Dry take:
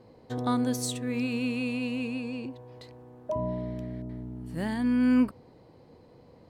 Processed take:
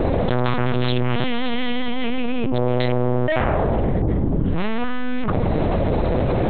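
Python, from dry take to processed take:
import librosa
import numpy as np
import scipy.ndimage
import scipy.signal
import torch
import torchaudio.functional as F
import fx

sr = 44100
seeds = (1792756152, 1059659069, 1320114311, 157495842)

p1 = fx.fold_sine(x, sr, drive_db=18, ceiling_db=-15.0)
p2 = x + F.gain(torch.from_numpy(p1), -12.0).numpy()
p3 = fx.lpc_vocoder(p2, sr, seeds[0], excitation='pitch_kept', order=8)
y = fx.env_flatten(p3, sr, amount_pct=100)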